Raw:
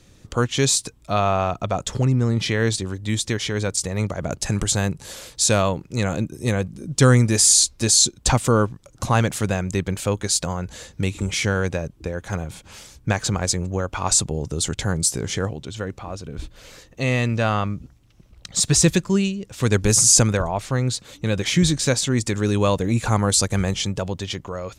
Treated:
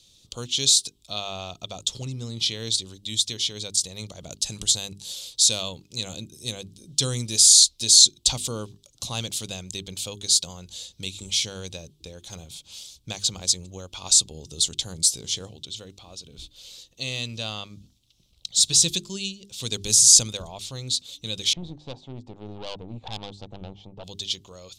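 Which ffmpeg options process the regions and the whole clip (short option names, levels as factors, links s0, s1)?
-filter_complex "[0:a]asettb=1/sr,asplit=3[s0][s1][s2];[s0]atrim=end=21.534[s3];[s1]atrim=start=21.53:end=24.04,asetpts=PTS-STARTPTS,afade=t=in:d=0.004:c=qsin,afade=t=out:st=2.506:d=0.004:c=qsin,lowpass=f=830:t=q:w=4.5,aeval=exprs='(tanh(7.08*val(0)+0.7)-tanh(0.7))/7.08':c=same[s4];[s2]atrim=start=24.036[s5];[s3][s4]acrossfade=d=0.004:c1=hsin:c2=qsin[s6];[s6][s5]acrossfade=d=0.004:c1=qsin:c2=hsin,highshelf=f=2500:t=q:w=3:g=13,bandreject=f=50:t=h:w=6,bandreject=f=100:t=h:w=6,bandreject=f=150:t=h:w=6,bandreject=f=200:t=h:w=6,bandreject=f=250:t=h:w=6,bandreject=f=300:t=h:w=6,bandreject=f=350:t=h:w=6,bandreject=f=400:t=h:w=6,volume=0.2"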